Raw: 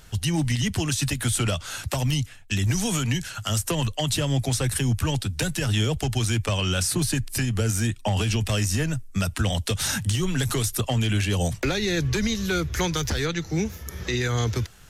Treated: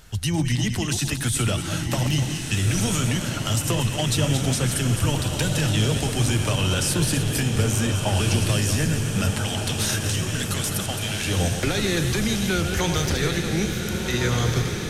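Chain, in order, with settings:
feedback delay that plays each chunk backwards 125 ms, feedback 46%, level −7 dB
0:09.39–0:11.28: high-pass filter 1,100 Hz 6 dB per octave
feedback delay with all-pass diffusion 1,492 ms, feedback 58%, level −5 dB

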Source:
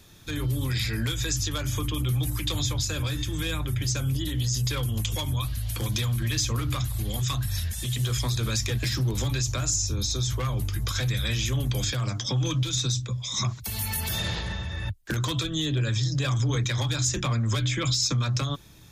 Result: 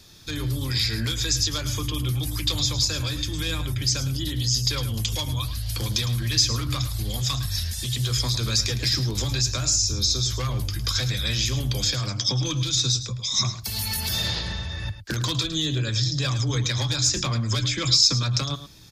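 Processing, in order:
parametric band 4,800 Hz +11 dB 0.66 octaves
single-tap delay 108 ms −12 dB

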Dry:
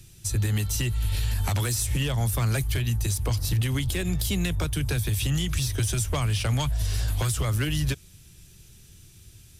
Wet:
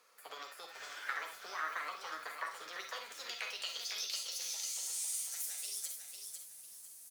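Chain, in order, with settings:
loose part that buzzes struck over −26 dBFS, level −37 dBFS
Chebyshev high-pass filter 330 Hz, order 3
parametric band 1,000 Hz +7.5 dB 0.24 octaves
healed spectral selection 0:05.97–0:06.90, 740–8,800 Hz
downward compressor 2.5 to 1, threshold −41 dBFS, peak gain reduction 10.5 dB
band-pass filter sweep 800 Hz → 5,200 Hz, 0:03.40–0:07.01
formants moved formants +5 semitones
double-tracking delay 13 ms −9 dB
convolution reverb RT60 0.30 s, pre-delay 52 ms, DRR 5 dB
wrong playback speed 33 rpm record played at 45 rpm
feedback echo at a low word length 500 ms, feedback 35%, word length 11 bits, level −5.5 dB
level +6.5 dB

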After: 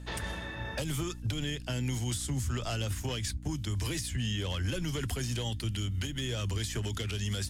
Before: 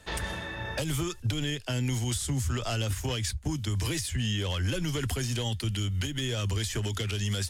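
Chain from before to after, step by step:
mains hum 60 Hz, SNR 10 dB
level −3.5 dB

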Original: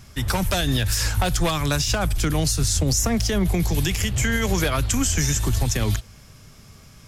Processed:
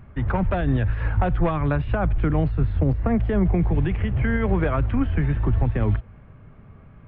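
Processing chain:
Gaussian smoothing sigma 4.7 samples
level +1.5 dB

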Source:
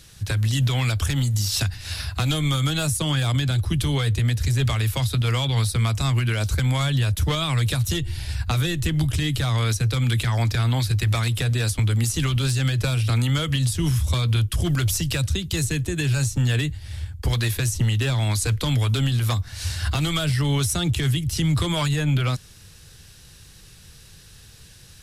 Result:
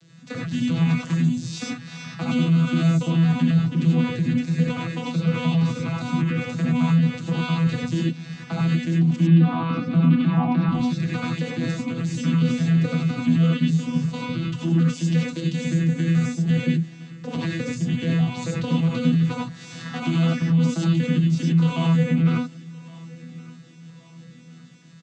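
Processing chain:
vocoder with an arpeggio as carrier bare fifth, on E3, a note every 170 ms
brickwall limiter −17 dBFS, peak gain reduction 9 dB
0:09.16–0:10.69: loudspeaker in its box 150–3,500 Hz, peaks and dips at 180 Hz +9 dB, 300 Hz +10 dB, 430 Hz −6 dB, 800 Hz +7 dB, 1,100 Hz +8 dB, 1,900 Hz −7 dB
on a send: repeating echo 1,118 ms, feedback 46%, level −22 dB
on the sum: reverb whose tail is shaped and stops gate 120 ms rising, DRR −4 dB

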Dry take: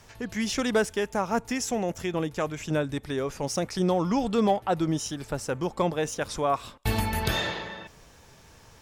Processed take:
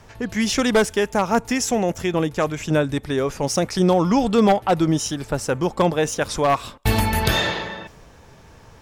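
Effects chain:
wavefolder on the positive side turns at −18.5 dBFS
one half of a high-frequency compander decoder only
level +7.5 dB

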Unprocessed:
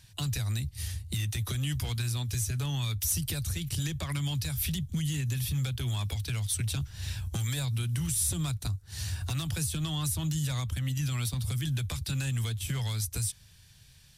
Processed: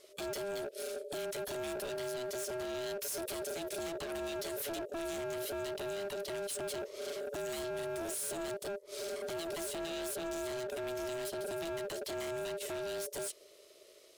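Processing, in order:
ring modulation 500 Hz
hard clipping −36 dBFS, distortion −8 dB

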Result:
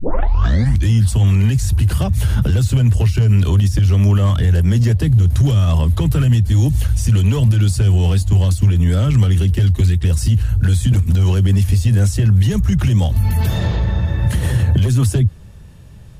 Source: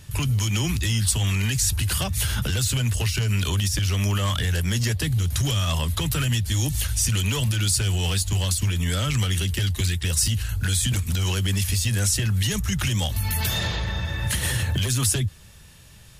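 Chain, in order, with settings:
turntable start at the beginning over 0.89 s
tilt shelving filter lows +9 dB, about 1,100 Hz
level +2 dB

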